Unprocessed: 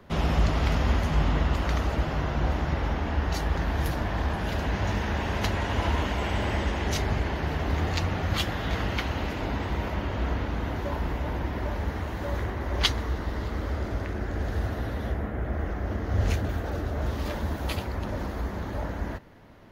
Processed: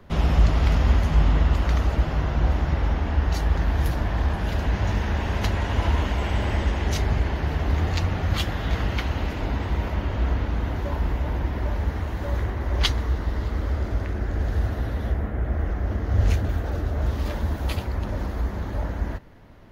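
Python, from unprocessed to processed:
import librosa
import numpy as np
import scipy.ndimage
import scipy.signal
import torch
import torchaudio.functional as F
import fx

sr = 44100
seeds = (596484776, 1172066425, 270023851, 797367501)

y = fx.low_shelf(x, sr, hz=82.0, db=9.5)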